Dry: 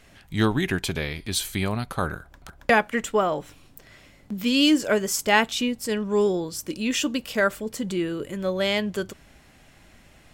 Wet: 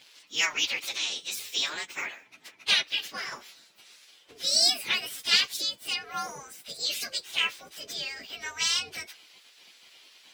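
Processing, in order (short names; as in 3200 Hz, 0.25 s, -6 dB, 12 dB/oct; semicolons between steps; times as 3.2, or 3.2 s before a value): inharmonic rescaling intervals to 121%; spectral gate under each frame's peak -15 dB weak; weighting filter D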